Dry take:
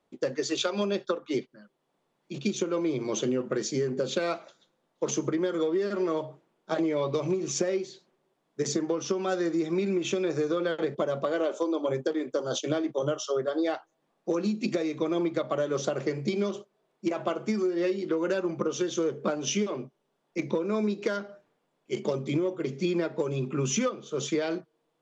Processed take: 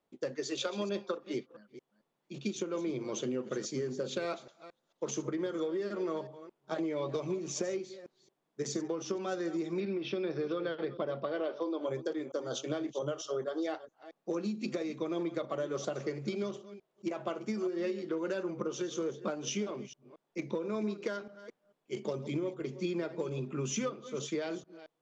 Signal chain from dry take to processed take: reverse delay 0.224 s, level -14 dB; 9.8–11.81 steep low-pass 5500 Hz 96 dB/oct; gain -7 dB

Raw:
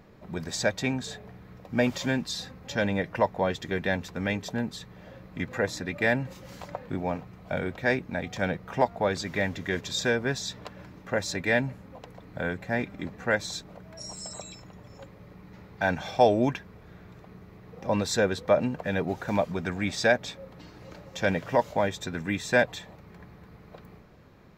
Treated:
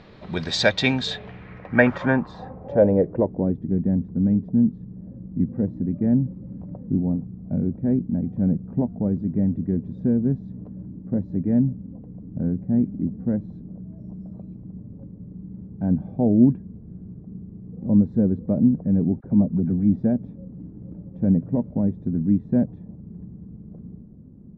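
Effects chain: 19.2–20.01 dispersion lows, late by 40 ms, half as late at 890 Hz; low-pass sweep 3900 Hz -> 230 Hz, 1.06–3.61; gain +6.5 dB

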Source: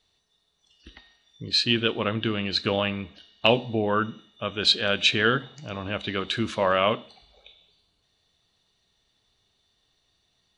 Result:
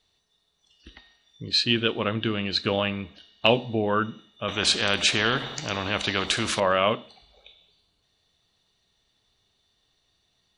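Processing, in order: 4.48–6.6 spectral compressor 2:1

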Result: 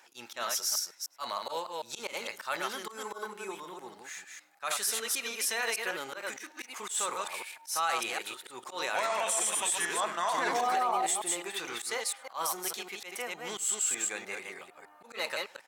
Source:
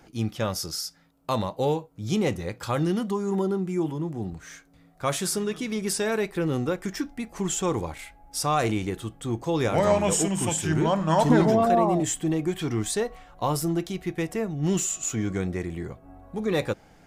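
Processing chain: reverse delay 0.165 s, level -4 dB; HPF 980 Hz 12 dB/oct; limiter -21.5 dBFS, peak gain reduction 9 dB; auto swell 0.106 s; outdoor echo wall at 19 m, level -25 dB; speed mistake 44.1 kHz file played as 48 kHz; gain +1.5 dB

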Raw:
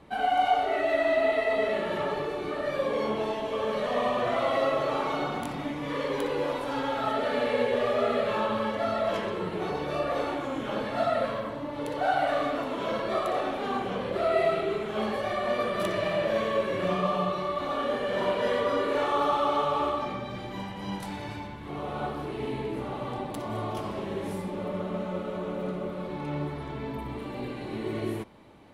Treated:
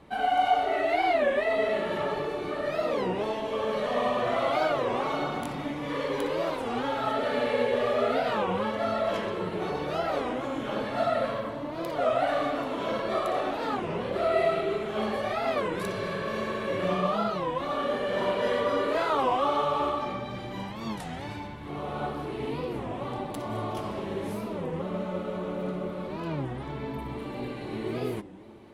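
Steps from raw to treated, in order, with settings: spectral repair 15.74–16.61, 240–3600 Hz after; on a send: analogue delay 0.142 s, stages 1024, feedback 75%, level -19.5 dB; on the sum: record warp 33 1/3 rpm, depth 250 cents

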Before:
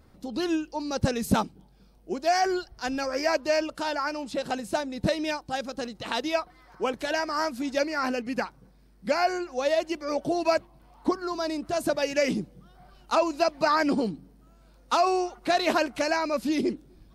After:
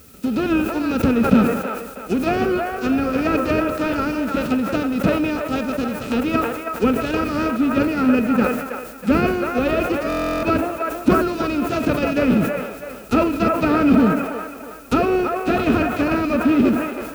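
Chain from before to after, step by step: spectral whitening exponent 0.3; in parallel at -9 dB: decimation with a swept rate 39×, swing 60% 2.1 Hz; on the sum: bell 74 Hz +14 dB 1.7 oct; band-limited delay 0.322 s, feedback 39%, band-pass 1000 Hz, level -4 dB; soft clip -13 dBFS, distortion -17 dB; small resonant body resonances 250/430/1300/2500 Hz, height 16 dB, ringing for 25 ms; treble ducked by the level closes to 2700 Hz, closed at -11 dBFS; on a send at -16.5 dB: reverb, pre-delay 43 ms; on the sum: added noise blue -45 dBFS; stuck buffer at 10.08, samples 1024, times 14; sustainer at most 56 dB/s; gain -4.5 dB

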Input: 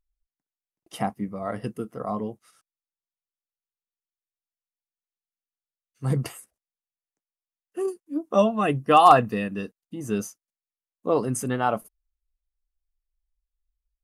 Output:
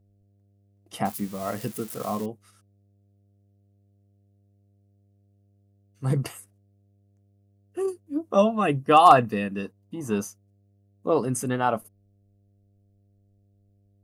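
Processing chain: 1.05–2.26 switching spikes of -29 dBFS; 9.65–10.25 bell 960 Hz +12 dB 0.55 oct; buzz 100 Hz, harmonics 7, -63 dBFS -9 dB/oct

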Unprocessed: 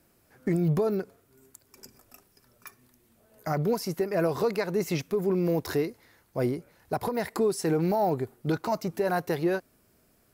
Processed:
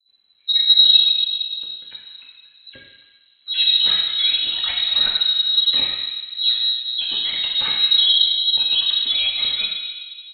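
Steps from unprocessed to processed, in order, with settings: per-bin expansion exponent 1.5; low shelf 380 Hz +8 dB; in parallel at +2 dB: limiter -22 dBFS, peak gain reduction 9.5 dB; on the sum: careless resampling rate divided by 6×, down none, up zero stuff; elliptic band-stop 230–590 Hz; low shelf 170 Hz +6 dB; dispersion highs, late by 85 ms, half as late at 480 Hz; reverb RT60 2.0 s, pre-delay 3 ms, DRR -4 dB; inverted band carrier 4000 Hz; gain -2 dB

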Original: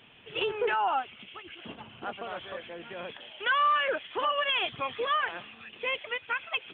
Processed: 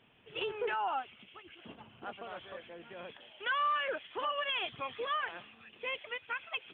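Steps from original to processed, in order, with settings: mismatched tape noise reduction decoder only; gain -6.5 dB

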